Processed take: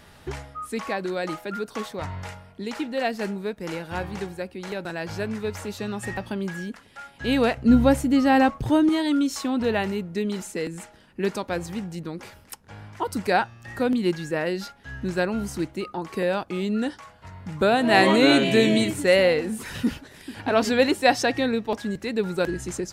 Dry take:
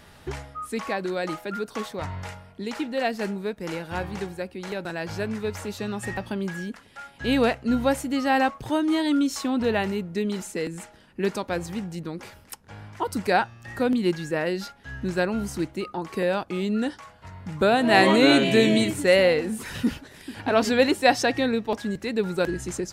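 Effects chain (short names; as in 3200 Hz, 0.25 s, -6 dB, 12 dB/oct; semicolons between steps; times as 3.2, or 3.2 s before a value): 7.57–8.89 low shelf 320 Hz +11.5 dB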